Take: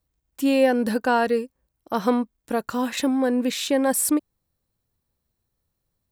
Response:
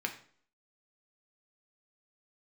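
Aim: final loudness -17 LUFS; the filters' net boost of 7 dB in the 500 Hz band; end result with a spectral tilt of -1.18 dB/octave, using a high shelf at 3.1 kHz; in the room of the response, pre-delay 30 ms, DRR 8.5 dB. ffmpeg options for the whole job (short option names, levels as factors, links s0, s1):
-filter_complex "[0:a]equalizer=f=500:t=o:g=7.5,highshelf=f=3100:g=-3,asplit=2[s0][s1];[1:a]atrim=start_sample=2205,adelay=30[s2];[s1][s2]afir=irnorm=-1:irlink=0,volume=0.237[s3];[s0][s3]amix=inputs=2:normalize=0,volume=1.19"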